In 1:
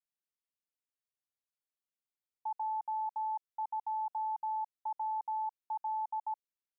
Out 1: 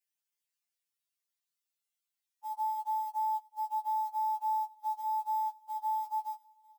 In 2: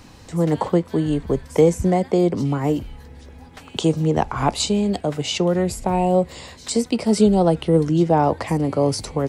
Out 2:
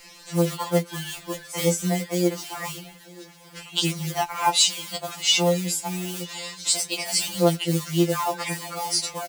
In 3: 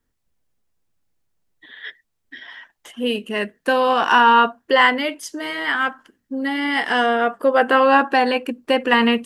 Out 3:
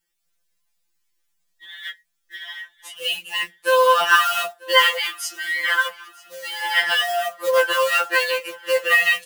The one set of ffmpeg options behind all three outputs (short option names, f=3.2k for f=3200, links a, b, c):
-filter_complex "[0:a]acrusher=bits=6:mode=log:mix=0:aa=0.000001,lowshelf=f=280:g=-4.5,flanger=delay=5.4:depth=4.8:regen=-42:speed=0.28:shape=sinusoidal,tiltshelf=f=1.1k:g=-8,asplit=2[a][b];[b]aecho=0:1:942|1884|2826|3768:0.0708|0.0404|0.023|0.0131[c];[a][c]amix=inputs=2:normalize=0,afftfilt=real='re*2.83*eq(mod(b,8),0)':imag='im*2.83*eq(mod(b,8),0)':win_size=2048:overlap=0.75,volume=5dB"